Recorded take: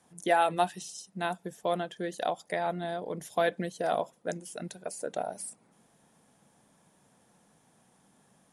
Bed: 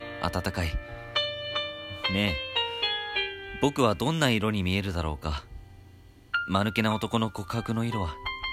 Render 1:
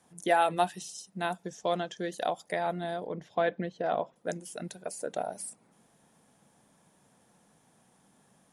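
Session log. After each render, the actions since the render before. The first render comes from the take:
0:01.43–0:02.11: low-pass with resonance 6,100 Hz, resonance Q 3.7
0:03.06–0:04.16: high-frequency loss of the air 220 metres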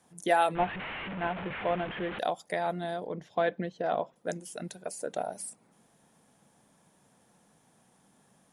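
0:00.55–0:02.19: linear delta modulator 16 kbit/s, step −31.5 dBFS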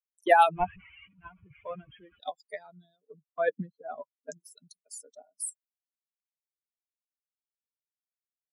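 spectral dynamics exaggerated over time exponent 3
multiband upward and downward expander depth 100%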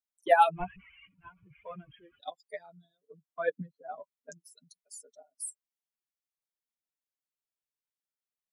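flanger 1.2 Hz, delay 4.2 ms, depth 4.1 ms, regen −3%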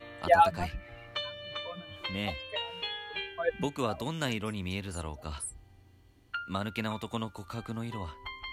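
mix in bed −8.5 dB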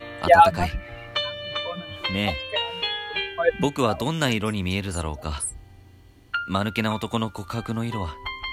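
level +9.5 dB
brickwall limiter −3 dBFS, peak gain reduction 2.5 dB

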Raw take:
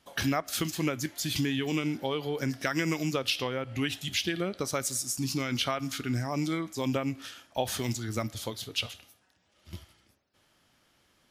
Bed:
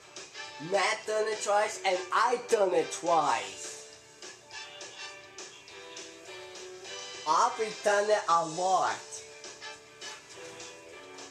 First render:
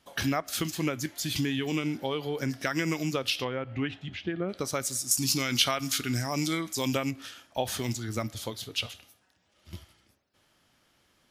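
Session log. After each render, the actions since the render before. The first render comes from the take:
0:03.44–0:04.48: low-pass filter 3,200 Hz → 1,300 Hz
0:05.11–0:07.11: high-shelf EQ 2,700 Hz +11 dB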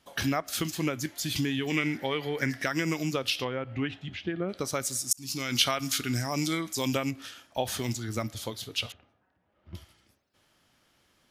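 0:01.70–0:02.64: parametric band 1,900 Hz +14.5 dB 0.53 octaves
0:05.13–0:05.58: fade in
0:08.92–0:09.75: low-pass filter 1,400 Hz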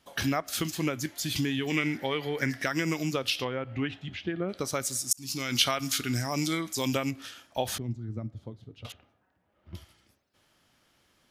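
0:07.78–0:08.85: resonant band-pass 120 Hz, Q 0.69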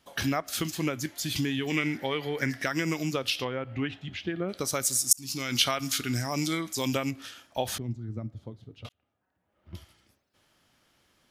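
0:04.15–0:05.21: high-shelf EQ 5,100 Hz +7.5 dB
0:08.89–0:09.74: fade in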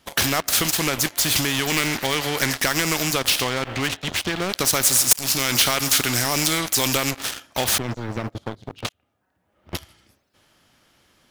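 leveller curve on the samples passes 3
every bin compressed towards the loudest bin 2 to 1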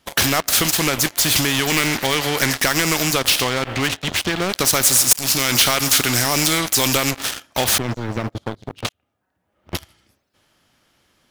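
leveller curve on the samples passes 1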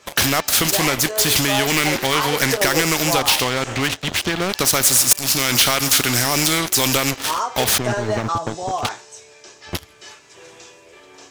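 mix in bed +2 dB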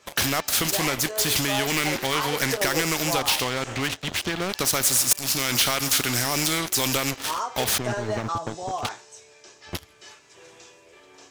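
level −6 dB

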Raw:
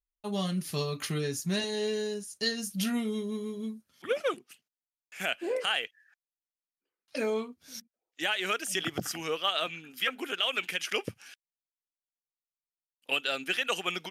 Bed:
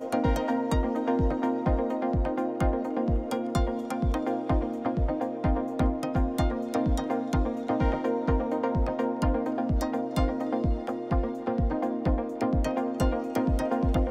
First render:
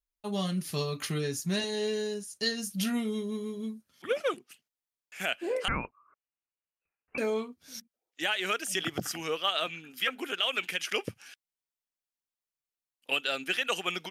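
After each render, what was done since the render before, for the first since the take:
0:05.68–0:07.18: voice inversion scrambler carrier 2,900 Hz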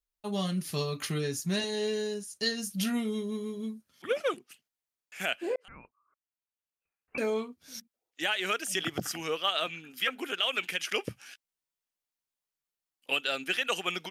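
0:05.56–0:07.22: fade in
0:11.09–0:13.12: double-tracking delay 16 ms −5 dB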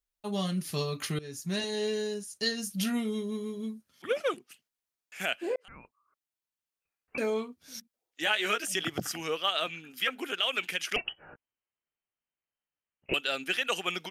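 0:01.19–0:01.82: fade in equal-power, from −18 dB
0:08.25–0:08.67: double-tracking delay 14 ms −3 dB
0:10.96–0:13.14: voice inversion scrambler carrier 3,100 Hz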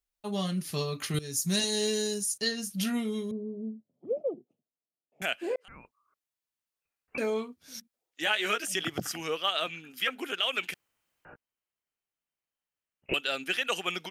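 0:01.14–0:02.38: bass and treble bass +5 dB, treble +14 dB
0:03.31–0:05.22: elliptic band-pass filter 120–670 Hz
0:10.74–0:11.25: fill with room tone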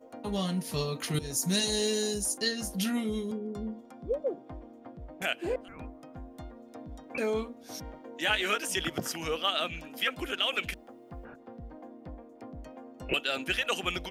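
mix in bed −18.5 dB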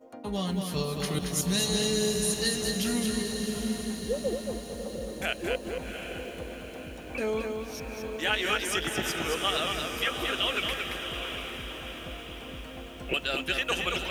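feedback delay with all-pass diffusion 740 ms, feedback 54%, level −6.5 dB
feedback echo at a low word length 225 ms, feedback 35%, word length 9 bits, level −4.5 dB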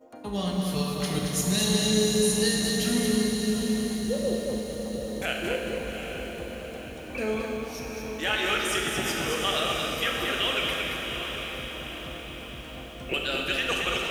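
four-comb reverb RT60 1.9 s, combs from 29 ms, DRR 1.5 dB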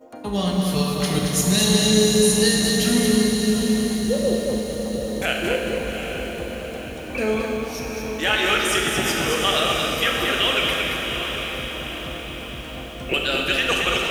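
level +6.5 dB

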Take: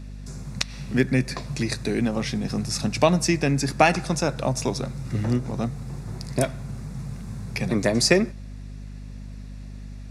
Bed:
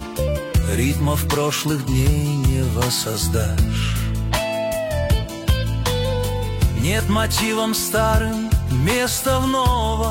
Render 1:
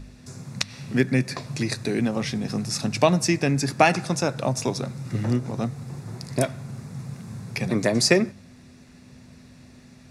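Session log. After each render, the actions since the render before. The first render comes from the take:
hum removal 50 Hz, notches 4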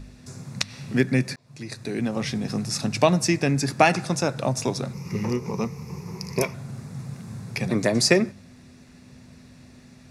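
0:01.36–0:02.27: fade in
0:04.93–0:06.54: EQ curve with evenly spaced ripples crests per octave 0.81, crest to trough 14 dB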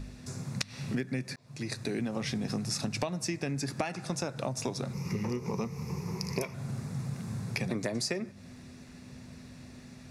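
downward compressor 16 to 1, threshold −29 dBFS, peak gain reduction 18.5 dB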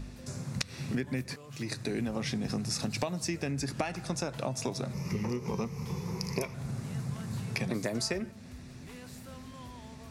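mix in bed −31.5 dB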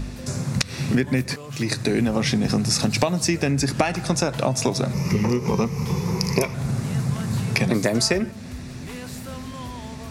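level +12 dB
brickwall limiter −2 dBFS, peak gain reduction 3 dB

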